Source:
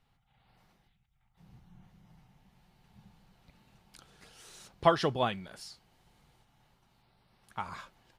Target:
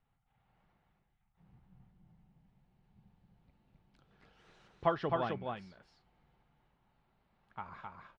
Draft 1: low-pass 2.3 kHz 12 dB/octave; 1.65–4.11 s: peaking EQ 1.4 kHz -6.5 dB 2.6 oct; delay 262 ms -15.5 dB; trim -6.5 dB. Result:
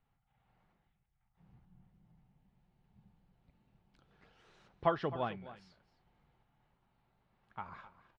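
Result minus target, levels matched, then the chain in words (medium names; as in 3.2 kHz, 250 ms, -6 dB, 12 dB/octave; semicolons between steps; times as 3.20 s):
echo-to-direct -12 dB
low-pass 2.3 kHz 12 dB/octave; 1.65–4.11 s: peaking EQ 1.4 kHz -6.5 dB 2.6 oct; delay 262 ms -3.5 dB; trim -6.5 dB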